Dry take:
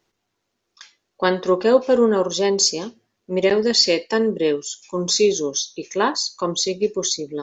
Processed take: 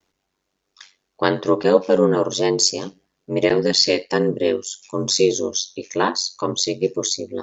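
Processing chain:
ring modulation 47 Hz
pitch vibrato 0.45 Hz 22 cents
level +3 dB

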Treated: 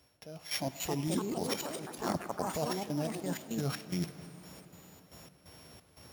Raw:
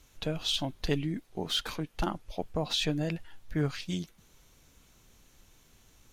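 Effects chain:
samples sorted by size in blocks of 8 samples
high-pass filter 70 Hz 24 dB per octave
parametric band 620 Hz +7 dB 0.75 octaves
brickwall limiter −22.5 dBFS, peak gain reduction 8.5 dB
reversed playback
downward compressor, threshold −40 dBFS, peak gain reduction 11.5 dB
reversed playback
gate pattern "...x.xx.x" 88 BPM −12 dB
on a send at −13 dB: convolution reverb RT60 4.5 s, pre-delay 52 ms
on the sum: delay with pitch and tempo change per echo 394 ms, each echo +4 semitones, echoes 3
level +8.5 dB

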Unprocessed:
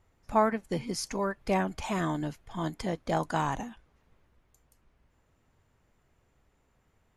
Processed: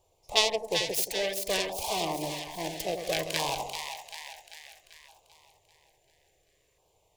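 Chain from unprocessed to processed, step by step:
phase distortion by the signal itself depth 0.79 ms
low-shelf EQ 310 Hz −9.5 dB
phaser with its sweep stopped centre 570 Hz, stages 4
on a send: echo with a time of its own for lows and highs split 830 Hz, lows 87 ms, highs 391 ms, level −6 dB
on the sum: auto-filter notch saw down 0.59 Hz 790–2,000 Hz
low-shelf EQ 130 Hz −7 dB
level +8.5 dB

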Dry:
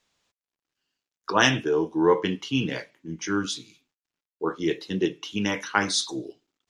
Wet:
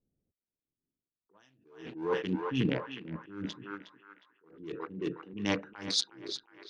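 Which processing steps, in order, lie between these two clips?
adaptive Wiener filter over 41 samples
low-pass that shuts in the quiet parts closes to 330 Hz, open at −20 dBFS
dynamic equaliser 4,500 Hz, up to +6 dB, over −49 dBFS, Q 3.1
downward compressor 6 to 1, threshold −23 dBFS, peak gain reduction 9.5 dB
on a send: feedback echo with a band-pass in the loop 362 ms, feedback 54%, band-pass 1,500 Hz, level −7 dB
on the sum: level that may rise only so fast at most 100 dB per second
level +3 dB

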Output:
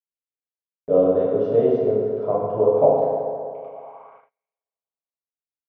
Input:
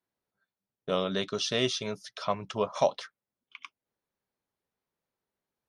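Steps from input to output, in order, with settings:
feedback delay network reverb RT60 2.4 s, low-frequency decay 0.75×, high-frequency decay 0.55×, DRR −7.5 dB
low-pass filter sweep 560 Hz → 9,000 Hz, 0:03.71–0:05.11
noise gate −48 dBFS, range −34 dB

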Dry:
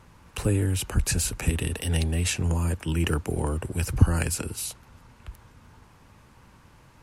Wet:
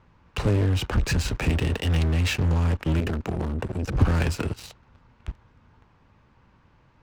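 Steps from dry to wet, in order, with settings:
high-frequency loss of the air 170 metres
in parallel at −6 dB: fuzz pedal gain 32 dB, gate −41 dBFS
0:03.00–0:03.95: on the sum: saturating transformer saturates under 360 Hz
level −4.5 dB

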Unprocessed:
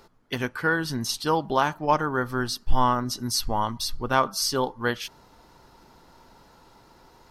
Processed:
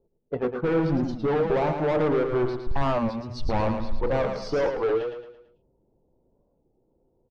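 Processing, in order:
low-pass that shuts in the quiet parts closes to 410 Hz, open at −19 dBFS
mains-hum notches 60/120/180/240/300/360/420/480 Hz
noise reduction from a noise print of the clip's start 16 dB
drawn EQ curve 290 Hz 0 dB, 490 Hz +8 dB, 1,500 Hz −11 dB
in parallel at −2 dB: compressor whose output falls as the input rises −26 dBFS, ratio −1
on the sum: leveller curve on the samples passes 1
gain into a clipping stage and back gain 20 dB
head-to-tape spacing loss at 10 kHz 27 dB
on a send: repeating echo 111 ms, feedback 42%, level −6.5 dB
on the sum: wow of a warped record 33 1/3 rpm, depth 160 cents

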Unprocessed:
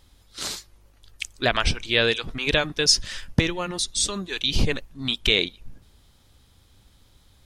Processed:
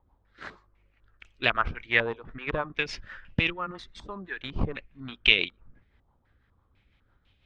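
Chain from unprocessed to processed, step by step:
rotating-speaker cabinet horn 6 Hz
harmonic generator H 6 −37 dB, 7 −25 dB, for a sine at −3.5 dBFS
low-pass on a step sequencer 4 Hz 940–2,700 Hz
level −4 dB

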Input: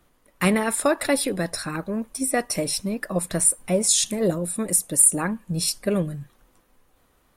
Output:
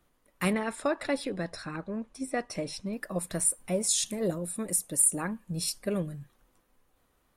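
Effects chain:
0:00.53–0:02.93: high-frequency loss of the air 83 metres
level −7.5 dB

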